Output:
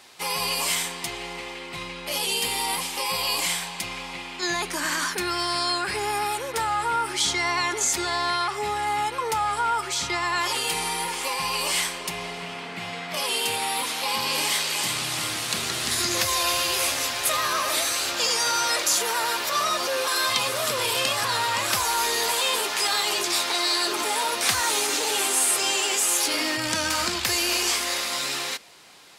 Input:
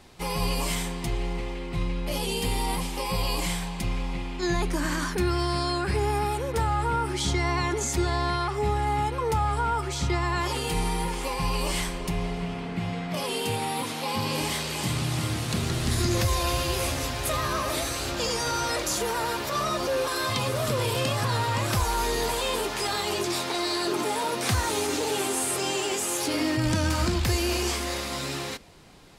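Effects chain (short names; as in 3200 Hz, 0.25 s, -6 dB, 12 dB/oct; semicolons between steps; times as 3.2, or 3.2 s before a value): HPF 1400 Hz 6 dB/oct; gain +7.5 dB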